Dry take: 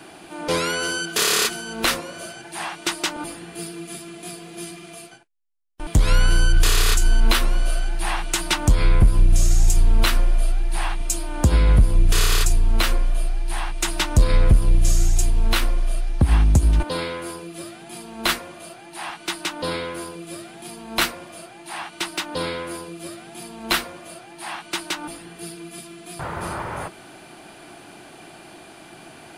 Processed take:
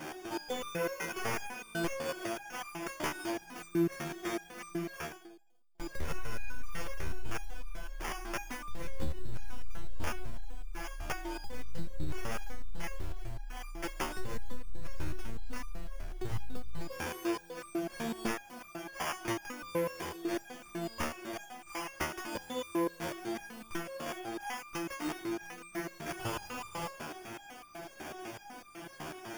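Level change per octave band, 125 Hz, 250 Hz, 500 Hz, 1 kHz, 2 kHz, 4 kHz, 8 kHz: -21.0 dB, -8.5 dB, -8.5 dB, -11.0 dB, -13.0 dB, -19.5 dB, -19.0 dB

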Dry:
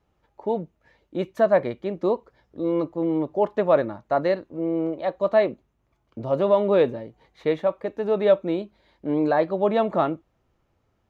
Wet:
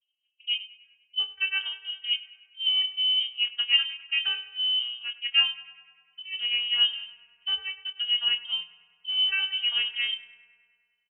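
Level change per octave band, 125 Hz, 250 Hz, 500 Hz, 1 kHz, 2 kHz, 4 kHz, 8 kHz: under -35 dB, under -40 dB, under -40 dB, -22.5 dB, +7.0 dB, +24.5 dB, no reading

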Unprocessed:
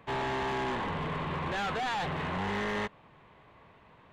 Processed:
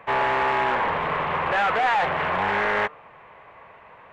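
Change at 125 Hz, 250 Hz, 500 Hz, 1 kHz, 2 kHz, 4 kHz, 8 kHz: -0.5 dB, +0.5 dB, +9.0 dB, +12.0 dB, +11.5 dB, +5.0 dB, no reading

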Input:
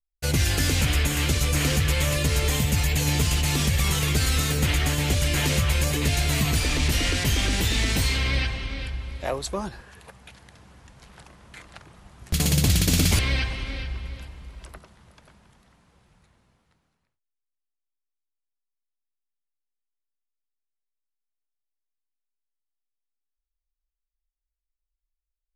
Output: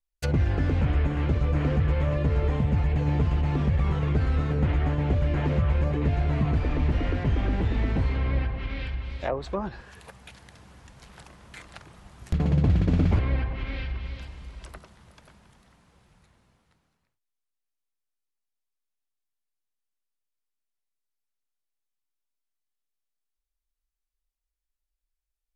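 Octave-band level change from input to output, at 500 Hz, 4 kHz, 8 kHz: 0.0 dB, -18.5 dB, under -25 dB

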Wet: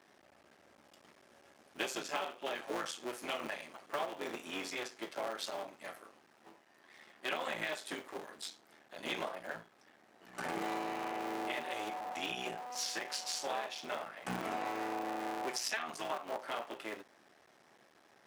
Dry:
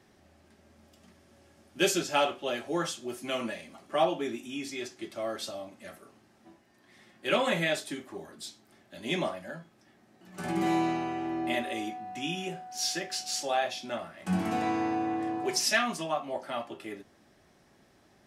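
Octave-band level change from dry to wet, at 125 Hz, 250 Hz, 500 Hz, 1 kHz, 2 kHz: -15.5 dB, -12.5 dB, -9.0 dB, -6.5 dB, -6.0 dB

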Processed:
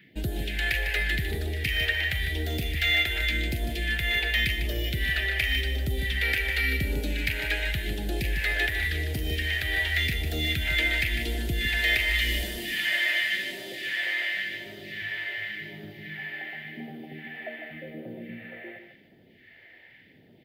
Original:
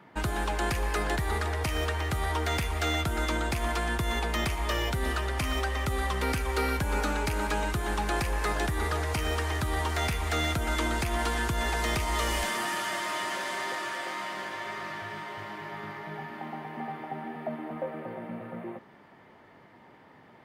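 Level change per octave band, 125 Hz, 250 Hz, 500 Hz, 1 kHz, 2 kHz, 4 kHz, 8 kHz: +0.5 dB, -2.5 dB, -5.0 dB, -14.5 dB, +7.5 dB, +7.0 dB, -5.0 dB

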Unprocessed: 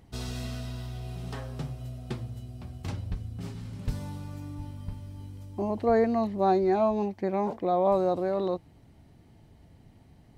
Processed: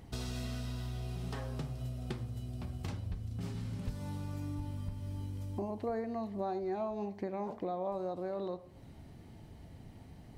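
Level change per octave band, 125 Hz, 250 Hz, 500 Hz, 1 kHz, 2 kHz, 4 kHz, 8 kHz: -3.0 dB, -9.0 dB, -11.5 dB, -12.0 dB, -8.0 dB, -4.5 dB, no reading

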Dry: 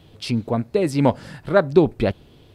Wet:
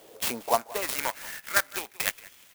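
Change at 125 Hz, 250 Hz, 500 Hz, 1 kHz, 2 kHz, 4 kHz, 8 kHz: -28.5 dB, -23.0 dB, -14.5 dB, -3.0 dB, +2.0 dB, +1.0 dB, +11.0 dB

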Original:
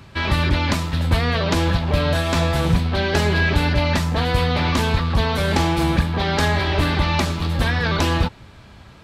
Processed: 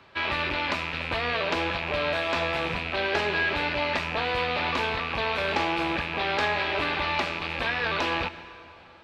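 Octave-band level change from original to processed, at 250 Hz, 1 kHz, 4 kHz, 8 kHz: -12.5 dB, -4.0 dB, -5.0 dB, -15.5 dB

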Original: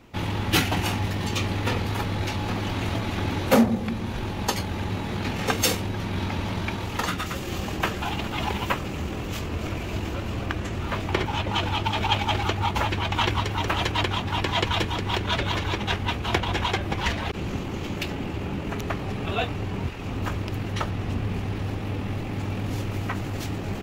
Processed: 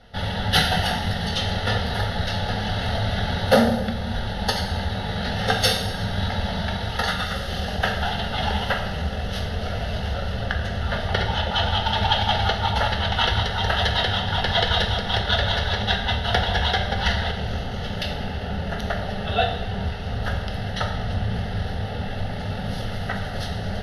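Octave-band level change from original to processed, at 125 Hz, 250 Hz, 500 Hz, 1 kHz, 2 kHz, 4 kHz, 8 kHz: +2.0 dB, -1.0 dB, +3.5 dB, +3.0 dB, +4.0 dB, +6.0 dB, -3.0 dB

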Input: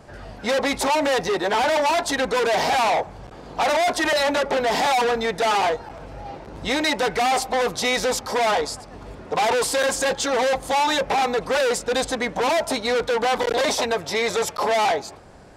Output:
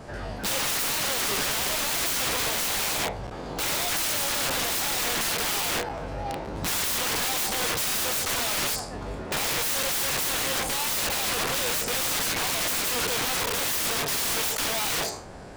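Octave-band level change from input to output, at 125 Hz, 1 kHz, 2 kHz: +1.5 dB, -10.5 dB, -4.5 dB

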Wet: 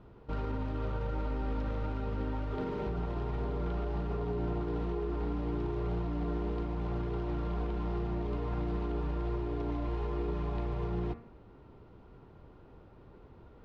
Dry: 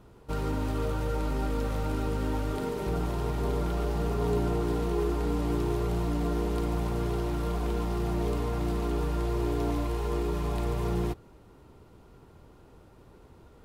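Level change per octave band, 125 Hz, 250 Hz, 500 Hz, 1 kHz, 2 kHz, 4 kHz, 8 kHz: -4.5 dB, -5.0 dB, -6.0 dB, -5.5 dB, -6.5 dB, -10.5 dB, under -20 dB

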